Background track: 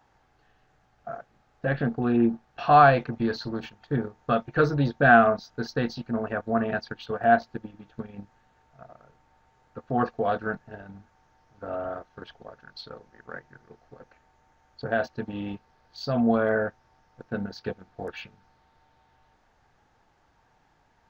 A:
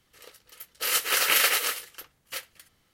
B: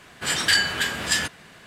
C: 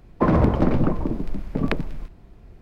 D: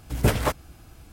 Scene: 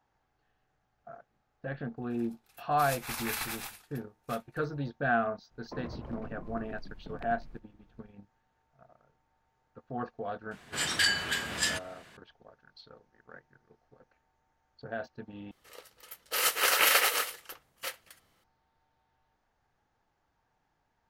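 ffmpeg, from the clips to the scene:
-filter_complex "[1:a]asplit=2[a][b];[0:a]volume=-11.5dB[c];[a]afreqshift=-460[d];[3:a]acompressor=threshold=-21dB:ratio=6:attack=3.2:release=140:knee=1:detection=peak[e];[b]equalizer=f=790:w=0.79:g=7[f];[c]asplit=2[g][h];[g]atrim=end=15.514[i];[f]atrim=end=2.93,asetpts=PTS-STARTPTS,volume=-3.5dB[j];[h]atrim=start=18.436[k];[d]atrim=end=2.93,asetpts=PTS-STARTPTS,volume=-14dB,afade=t=in:d=0.004:c=hsin,afade=t=out:st=2.926:d=0.004:c=hsin,adelay=1970[l];[e]atrim=end=2.61,asetpts=PTS-STARTPTS,volume=-17dB,afade=t=in:d=0.004:c=hsin,afade=t=out:st=2.606:d=0.004:c=hsin,adelay=5510[m];[2:a]atrim=end=1.66,asetpts=PTS-STARTPTS,volume=-7dB,afade=t=in:d=0.004:c=hsin,afade=t=out:st=1.656:d=0.004:c=hsin,adelay=10510[n];[i][j]acrossfade=d=0.004:c1=hsin:c2=hsin[o];[o][k]acrossfade=d=0.004:c1=hsin:c2=hsin[p];[p][l][m][n]amix=inputs=4:normalize=0"

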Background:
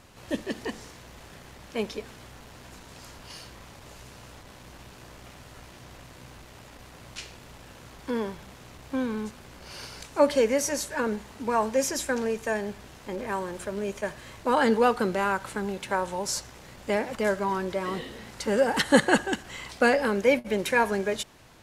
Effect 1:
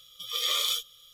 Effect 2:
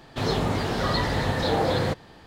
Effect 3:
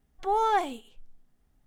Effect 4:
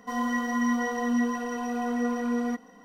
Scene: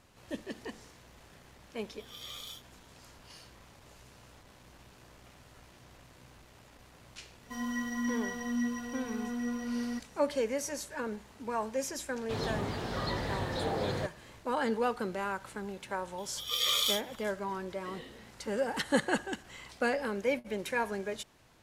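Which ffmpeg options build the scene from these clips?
-filter_complex "[1:a]asplit=2[a][b];[0:a]volume=-9dB[c];[4:a]equalizer=f=710:t=o:w=2.2:g=-13.5[d];[a]atrim=end=1.13,asetpts=PTS-STARTPTS,volume=-17.5dB,afade=t=in:d=0.004:c=hsin,afade=t=out:st=1.126:d=0.004:c=hsin,adelay=1790[e];[d]atrim=end=2.84,asetpts=PTS-STARTPTS,volume=-2dB,afade=t=in:d=0.004:c=hsin,afade=t=out:st=2.836:d=0.004:c=hsin,adelay=7430[f];[2:a]atrim=end=2.26,asetpts=PTS-STARTPTS,volume=-10dB,afade=t=in:d=0.004:c=hsin,afade=t=out:st=2.256:d=0.004:c=hsin,adelay=12130[g];[b]atrim=end=1.13,asetpts=PTS-STARTPTS,volume=-1.5dB,afade=t=in:d=0.004:c=hsin,afade=t=out:st=1.126:d=0.004:c=hsin,adelay=16180[h];[c][e][f][g][h]amix=inputs=5:normalize=0"

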